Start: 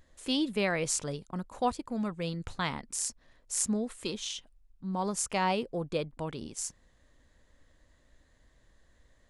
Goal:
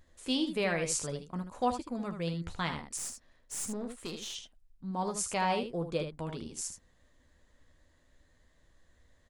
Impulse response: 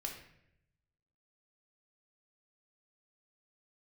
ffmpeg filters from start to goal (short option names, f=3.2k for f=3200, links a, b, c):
-filter_complex "[0:a]aecho=1:1:12|77:0.335|0.398,asettb=1/sr,asplit=3[a][b][c];[a]atrim=end=2.974[d];[b]atrim=start=2.97:end=4.35,asetpts=PTS-STARTPTS,afade=t=in:d=0.004:c=qsin,afade=t=out:st=1.376:d=0.004:c=qsin,aeval=exprs='(tanh(31.6*val(0)+0.45)-tanh(0.45))/31.6':c=same[e];[c]atrim=start=4.346[f];[d][e]acrossfade=d=0.004:c1=hsin:c2=qsin[g];[g][f]acrossfade=d=0.004:c1=qsin:c2=hsin,volume=-2.5dB"